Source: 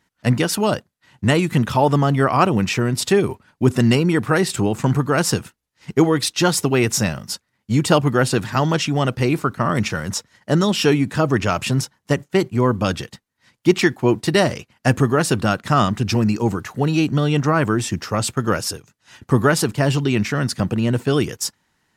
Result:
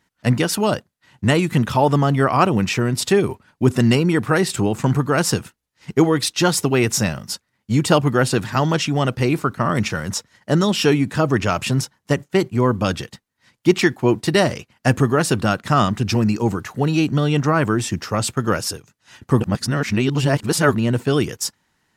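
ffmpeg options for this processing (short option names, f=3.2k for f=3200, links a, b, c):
-filter_complex "[0:a]asplit=3[a][b][c];[a]atrim=end=19.402[d];[b]atrim=start=19.398:end=20.752,asetpts=PTS-STARTPTS,areverse[e];[c]atrim=start=20.748[f];[d][e]acrossfade=d=0.004:c1=hsin:c2=hsin[g];[g][f]acrossfade=d=0.004:c1=hsin:c2=hsin"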